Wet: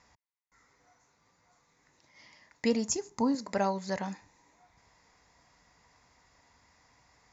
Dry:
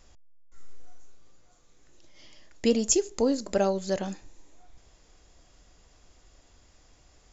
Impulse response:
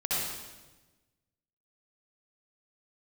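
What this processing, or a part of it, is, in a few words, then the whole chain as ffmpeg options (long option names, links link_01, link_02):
car door speaker: -filter_complex "[0:a]asettb=1/sr,asplit=3[link_01][link_02][link_03];[link_01]atrim=end=2.884[link_04];[link_02]atrim=start=2.88:end=3.35,asetpts=PTS-STARTPTS,afade=type=in:duration=0.004:curve=qsin,afade=type=out:start_time=0.466:duration=0.004:curve=qsin,equalizer=frequency=125:width_type=o:width=1:gain=7,equalizer=frequency=250:width_type=o:width=1:gain=4,equalizer=frequency=500:width_type=o:width=1:gain=-7,equalizer=frequency=1000:width_type=o:width=1:gain=3,equalizer=frequency=2000:width_type=o:width=1:gain=-7,equalizer=frequency=4000:width_type=o:width=1:gain=-4[link_05];[link_03]atrim=start=3.346[link_06];[link_04][link_05]acrossfade=duration=0.004:curve1=hsin:curve2=qsin[link_07];[link_07][link_06]acrossfade=duration=0.004:curve1=qsin:curve2=hsin,highpass=100,equalizer=frequency=350:width_type=q:width=4:gain=-10,equalizer=frequency=580:width_type=q:width=4:gain=-4,equalizer=frequency=960:width_type=q:width=4:gain=10,equalizer=frequency=2000:width_type=q:width=4:gain=9,equalizer=frequency=3100:width_type=q:width=4:gain=-9,lowpass=frequency=6500:width=0.5412,lowpass=frequency=6500:width=1.3066,volume=-2.5dB"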